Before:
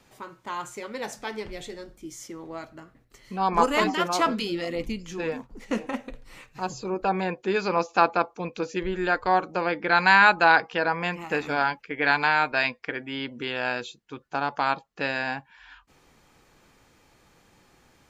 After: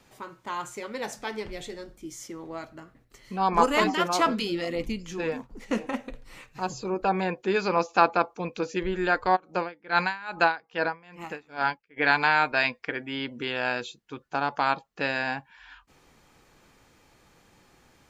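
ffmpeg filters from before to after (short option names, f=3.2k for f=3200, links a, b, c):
-filter_complex "[0:a]asplit=3[a][b][c];[a]afade=t=out:st=9.35:d=0.02[d];[b]aeval=exprs='val(0)*pow(10,-26*(0.5-0.5*cos(2*PI*2.4*n/s))/20)':c=same,afade=t=in:st=9.35:d=0.02,afade=t=out:st=11.96:d=0.02[e];[c]afade=t=in:st=11.96:d=0.02[f];[d][e][f]amix=inputs=3:normalize=0"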